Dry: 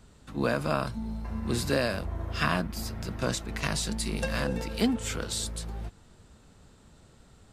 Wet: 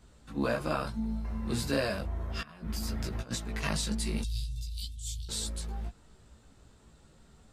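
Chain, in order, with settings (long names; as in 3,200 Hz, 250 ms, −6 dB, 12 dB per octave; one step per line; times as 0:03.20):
0:02.41–0:03.31: compressor whose output falls as the input rises −35 dBFS, ratio −0.5
0:04.22–0:05.29: Chebyshev band-stop filter 120–3,500 Hz, order 4
multi-voice chorus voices 4, 0.36 Hz, delay 16 ms, depth 2.9 ms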